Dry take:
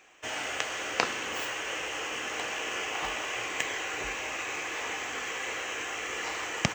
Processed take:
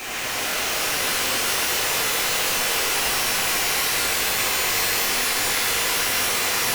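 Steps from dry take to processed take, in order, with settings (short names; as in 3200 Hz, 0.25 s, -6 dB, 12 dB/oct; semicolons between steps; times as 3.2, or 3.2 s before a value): infinite clipping; shimmer reverb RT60 3.9 s, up +12 st, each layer -2 dB, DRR -8 dB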